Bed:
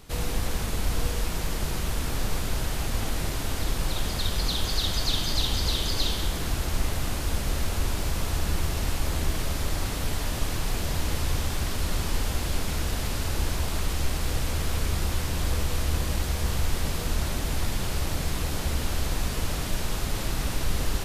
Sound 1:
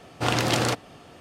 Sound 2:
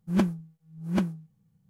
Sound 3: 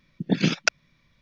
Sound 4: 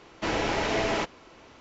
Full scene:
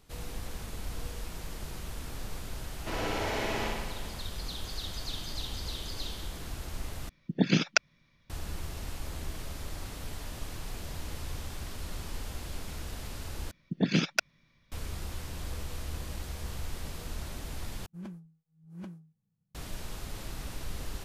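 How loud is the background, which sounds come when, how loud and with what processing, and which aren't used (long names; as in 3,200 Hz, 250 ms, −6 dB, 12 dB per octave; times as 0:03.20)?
bed −11.5 dB
0:02.64: mix in 4 −9 dB + flutter between parallel walls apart 10.2 metres, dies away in 1.4 s
0:07.09: overwrite with 3 −3 dB
0:13.51: overwrite with 3 −3 dB + soft clipping −11 dBFS
0:17.86: overwrite with 2 −13.5 dB + brickwall limiter −23.5 dBFS
not used: 1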